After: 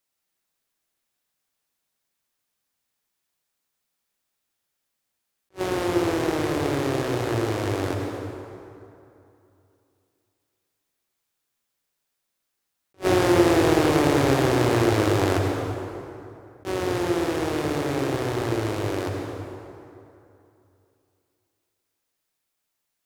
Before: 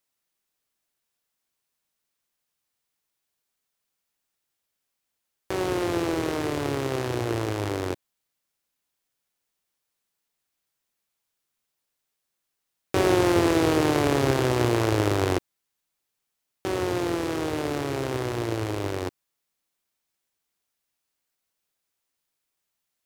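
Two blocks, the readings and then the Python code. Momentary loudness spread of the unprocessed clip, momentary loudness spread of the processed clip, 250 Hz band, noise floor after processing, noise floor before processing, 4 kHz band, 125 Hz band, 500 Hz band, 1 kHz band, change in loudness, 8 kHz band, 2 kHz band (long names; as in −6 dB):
10 LU, 16 LU, +2.5 dB, −80 dBFS, −81 dBFS, +1.5 dB, +2.0 dB, +2.5 dB, +2.5 dB, +2.0 dB, +1.5 dB, +2.5 dB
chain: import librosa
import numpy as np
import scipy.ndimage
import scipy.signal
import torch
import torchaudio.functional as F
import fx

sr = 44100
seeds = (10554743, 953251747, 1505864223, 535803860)

y = fx.rev_plate(x, sr, seeds[0], rt60_s=2.8, hf_ratio=0.6, predelay_ms=90, drr_db=1.5)
y = fx.attack_slew(y, sr, db_per_s=450.0)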